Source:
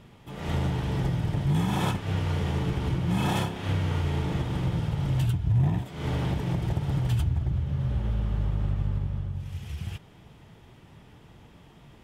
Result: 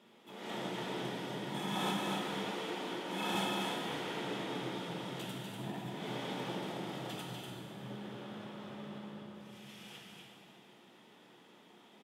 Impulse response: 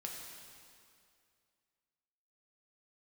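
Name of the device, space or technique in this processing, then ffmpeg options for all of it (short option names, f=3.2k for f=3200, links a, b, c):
stadium PA: -filter_complex "[0:a]highpass=f=220:w=0.5412,highpass=f=220:w=1.3066,equalizer=f=3.5k:t=o:w=0.22:g=6,aecho=1:1:244.9|291.5:0.562|0.251[a];[1:a]atrim=start_sample=2205[b];[a][b]afir=irnorm=-1:irlink=0,asettb=1/sr,asplit=3[c][d][e];[c]atrim=end=2.514[f];[d]atrim=start=2.51:end=3.35,asetpts=PTS-STARTPTS,afade=t=in:d=0.004:c=qsin,afade=t=out:st=0.836:d=0.004:c=qsin,highpass=240[g];[e]atrim=start=3.346[h];[f][g]acrossfade=d=0.004:c1=hsin:c2=qsin[i];[i][h]acrossfade=d=0.004:c1=qsin:c2=hsin,lowshelf=f=73:g=-11,volume=-3.5dB"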